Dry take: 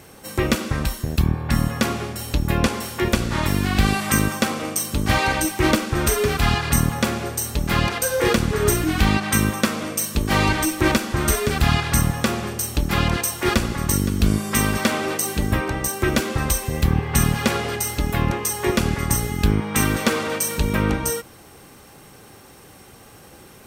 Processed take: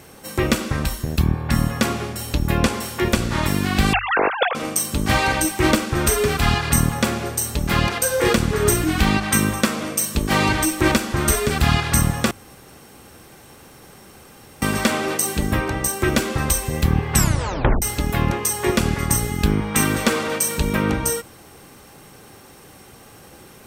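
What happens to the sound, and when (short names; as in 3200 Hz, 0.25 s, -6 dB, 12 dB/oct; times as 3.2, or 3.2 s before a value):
3.93–4.55 sine-wave speech
12.31–14.62 room tone
17.14 tape stop 0.68 s
whole clip: notches 50/100 Hz; dynamic EQ 8000 Hz, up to +4 dB, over -42 dBFS, Q 6; gain +1 dB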